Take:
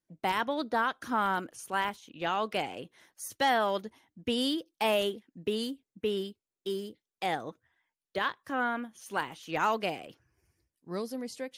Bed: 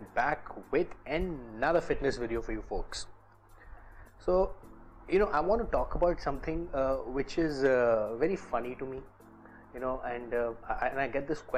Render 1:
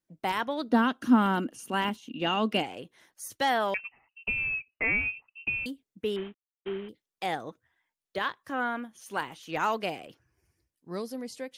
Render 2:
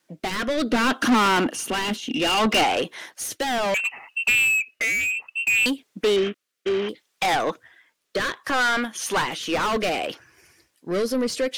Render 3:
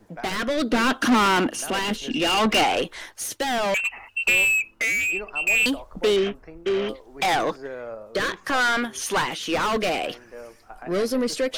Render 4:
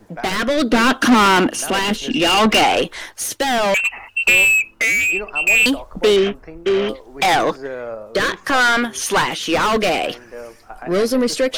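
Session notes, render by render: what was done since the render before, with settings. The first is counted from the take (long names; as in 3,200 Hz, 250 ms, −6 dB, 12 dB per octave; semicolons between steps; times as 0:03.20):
0:00.69–0:02.62: hollow resonant body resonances 240/2,800 Hz, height 17 dB → 15 dB, ringing for 35 ms; 0:03.74–0:05.66: voice inversion scrambler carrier 2,900 Hz; 0:06.16–0:06.89: variable-slope delta modulation 16 kbit/s
mid-hump overdrive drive 32 dB, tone 5,600 Hz, clips at −11 dBFS; rotating-speaker cabinet horn 0.65 Hz
mix in bed −9 dB
level +6.5 dB; brickwall limiter −3 dBFS, peak gain reduction 2 dB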